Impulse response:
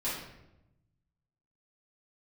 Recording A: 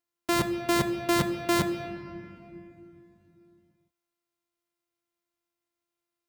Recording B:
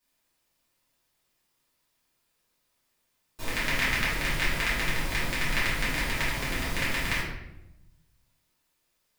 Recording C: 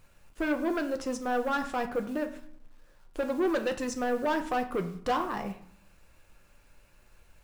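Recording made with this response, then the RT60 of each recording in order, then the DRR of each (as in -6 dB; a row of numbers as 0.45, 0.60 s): B; 2.8, 0.90, 0.60 s; 7.5, -10.5, 6.0 dB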